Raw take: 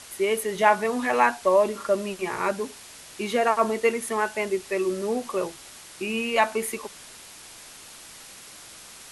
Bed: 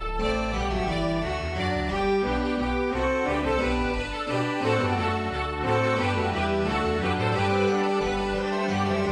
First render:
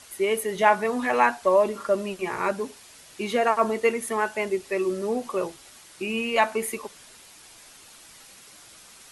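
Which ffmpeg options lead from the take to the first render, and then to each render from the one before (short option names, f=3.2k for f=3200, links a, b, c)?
-af "afftdn=nr=6:nf=-46"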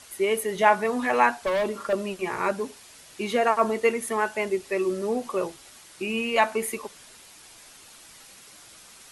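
-filter_complex "[0:a]asettb=1/sr,asplit=3[a][b][c];[a]atrim=end=1.444[d];[b]atrim=start=1.44:end=1.93,asetpts=PTS-STARTPTS,afade=t=in:d=0.004:c=qsin,afade=t=out:st=0.486:d=0.004:c=qsin,volume=22dB,asoftclip=hard,volume=-22dB[e];[c]atrim=start=1.926[f];[d][e]acrossfade=d=0.004:c1=hsin:c2=qsin[g];[g][f]acrossfade=d=0.004:c1=qsin:c2=hsin"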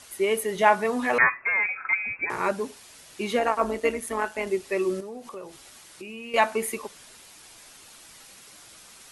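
-filter_complex "[0:a]asettb=1/sr,asplit=3[a][b][c];[a]atrim=end=1.184[d];[b]atrim=start=1.18:end=2.3,asetpts=PTS-STARTPTS,afade=t=in:d=0.004:c=qsin,afade=t=out:st=1.116:d=0.004:c=qsin,lowpass=f=2.3k:t=q:w=0.5098,lowpass=f=2.3k:t=q:w=0.6013,lowpass=f=2.3k:t=q:w=0.9,lowpass=f=2.3k:t=q:w=2.563,afreqshift=-2700[e];[c]atrim=start=2.296[f];[d][e]acrossfade=d=0.004:c1=hsin:c2=qsin[g];[g][f]acrossfade=d=0.004:c1=qsin:c2=hsin,asettb=1/sr,asplit=3[h][i][j];[h]atrim=end=3.394[k];[i]atrim=start=3.39:end=4.47,asetpts=PTS-STARTPTS,afade=t=in:d=0.004:c=qsin,afade=t=out:st=1.076:d=0.004:c=qsin,tremolo=f=170:d=0.571[l];[j]atrim=start=4.466[m];[k][l]acrossfade=d=0.004:c1=hsin:c2=qsin[n];[n][m]acrossfade=d=0.004:c1=qsin:c2=hsin,asettb=1/sr,asplit=3[o][p][q];[o]atrim=end=5.004[r];[p]atrim=start=5:end=6.34,asetpts=PTS-STARTPTS,afade=t=in:d=0.004:c=qsin,afade=t=out:st=1.336:d=0.004:c=qsin,acompressor=threshold=-39dB:ratio=3:attack=3.2:release=140:knee=1:detection=peak[s];[q]atrim=start=6.336[t];[r][s]acrossfade=d=0.004:c1=hsin:c2=qsin[u];[u][t]acrossfade=d=0.004:c1=qsin:c2=hsin"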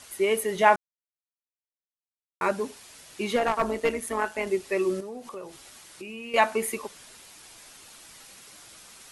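-filter_complex "[0:a]asettb=1/sr,asplit=3[a][b][c];[a]atrim=end=3.364[d];[b]atrim=start=3.36:end=4.01,asetpts=PTS-STARTPTS,afade=t=in:d=0.004:c=qsin,afade=t=out:st=0.646:d=0.004:c=qsin,aeval=exprs='clip(val(0),-1,0.1)':c=same[e];[c]atrim=start=4.006[f];[d][e]acrossfade=d=0.004:c1=hsin:c2=qsin[g];[g][f]acrossfade=d=0.004:c1=qsin:c2=hsin,asplit=3[h][i][j];[h]atrim=end=0.76,asetpts=PTS-STARTPTS,afade=t=out:st=0.756:d=0.004:c=hsin[k];[i]atrim=start=0.76:end=2.41,asetpts=PTS-STARTPTS,volume=0[l];[j]atrim=start=2.41,asetpts=PTS-STARTPTS,afade=t=in:d=0.004:c=hsin[m];[k][l][m]concat=n=3:v=0:a=1"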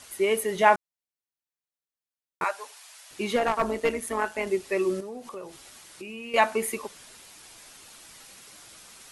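-filter_complex "[0:a]asettb=1/sr,asplit=3[a][b][c];[a]atrim=end=2.444[d];[b]atrim=start=2.44:end=3.11,asetpts=PTS-STARTPTS,afade=t=in:d=0.004:c=qsin,afade=t=out:st=0.666:d=0.004:c=qsin,highpass=f=680:w=0.5412,highpass=f=680:w=1.3066[e];[c]atrim=start=3.106[f];[d][e]acrossfade=d=0.004:c1=hsin:c2=qsin[g];[g][f]acrossfade=d=0.004:c1=qsin:c2=hsin"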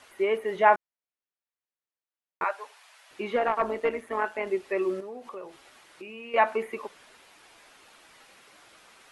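-filter_complex "[0:a]acrossover=split=2700[a][b];[b]acompressor=threshold=-44dB:ratio=4:attack=1:release=60[c];[a][c]amix=inputs=2:normalize=0,bass=f=250:g=-10,treble=f=4k:g=-13"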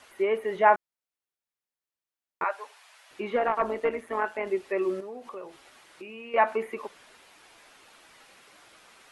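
-filter_complex "[0:a]acrossover=split=2800[a][b];[b]acompressor=threshold=-51dB:ratio=4:attack=1:release=60[c];[a][c]amix=inputs=2:normalize=0"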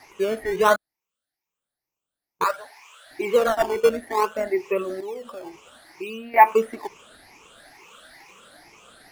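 -filter_complex "[0:a]afftfilt=real='re*pow(10,18/40*sin(2*PI*(0.76*log(max(b,1)*sr/1024/100)/log(2)-(2.2)*(pts-256)/sr)))':imag='im*pow(10,18/40*sin(2*PI*(0.76*log(max(b,1)*sr/1024/100)/log(2)-(2.2)*(pts-256)/sr)))':win_size=1024:overlap=0.75,asplit=2[a][b];[b]acrusher=samples=13:mix=1:aa=0.000001:lfo=1:lforange=20.8:lforate=0.59,volume=-8dB[c];[a][c]amix=inputs=2:normalize=0"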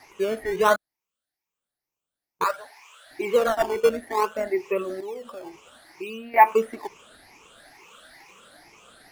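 -af "volume=-1.5dB"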